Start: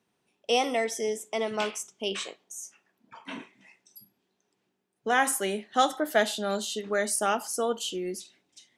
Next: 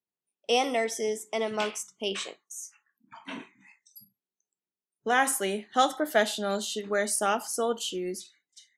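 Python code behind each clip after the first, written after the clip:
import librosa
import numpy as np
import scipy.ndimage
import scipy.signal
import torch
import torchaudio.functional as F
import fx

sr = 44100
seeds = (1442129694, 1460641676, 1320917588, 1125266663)

y = fx.noise_reduce_blind(x, sr, reduce_db=24)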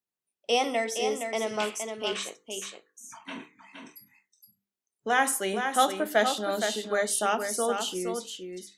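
y = fx.hum_notches(x, sr, base_hz=50, count=10)
y = y + 10.0 ** (-6.5 / 20.0) * np.pad(y, (int(467 * sr / 1000.0), 0))[:len(y)]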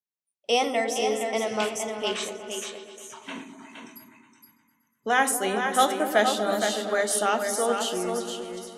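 y = fx.echo_opening(x, sr, ms=120, hz=400, octaves=1, feedback_pct=70, wet_db=-6)
y = fx.noise_reduce_blind(y, sr, reduce_db=13)
y = y * 10.0 ** (2.0 / 20.0)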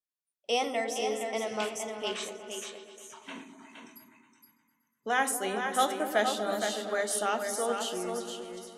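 y = fx.peak_eq(x, sr, hz=68.0, db=-5.5, octaves=1.8)
y = y * 10.0 ** (-5.5 / 20.0)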